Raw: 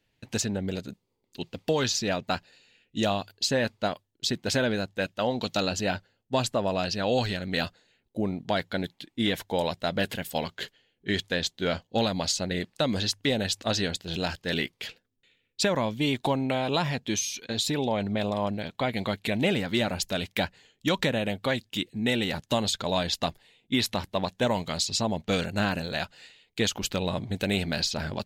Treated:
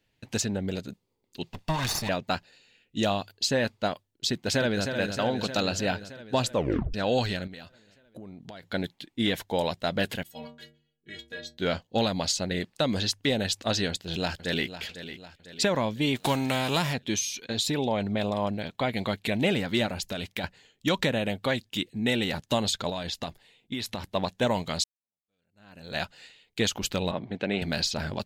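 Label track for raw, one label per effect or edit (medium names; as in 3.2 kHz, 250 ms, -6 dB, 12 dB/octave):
1.530000	2.090000	comb filter that takes the minimum delay 1.1 ms
4.290000	4.880000	echo throw 310 ms, feedback 70%, level -6.5 dB
6.530000	6.530000	tape stop 0.41 s
7.470000	8.630000	compression, threshold -41 dBFS
10.230000	11.580000	inharmonic resonator 70 Hz, decay 0.71 s, inharmonicity 0.03
13.890000	14.790000	echo throw 500 ms, feedback 50%, level -12 dB
16.150000	16.920000	formants flattened exponent 0.6
19.860000	20.440000	compression, threshold -28 dBFS
22.890000	24.130000	compression 5:1, threshold -29 dBFS
24.840000	25.970000	fade in exponential
27.110000	27.620000	band-pass 180–2700 Hz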